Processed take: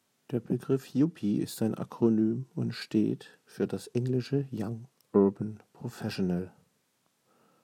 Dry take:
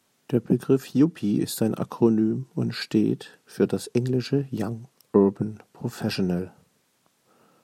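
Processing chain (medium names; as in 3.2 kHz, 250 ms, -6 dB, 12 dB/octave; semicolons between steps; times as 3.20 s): self-modulated delay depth 0.082 ms; harmonic-percussive split harmonic +5 dB; trim -9 dB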